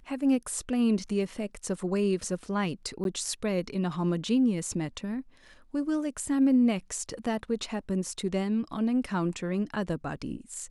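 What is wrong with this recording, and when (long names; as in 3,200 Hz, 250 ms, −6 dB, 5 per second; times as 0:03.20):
0:03.04–0:03.05: drop-out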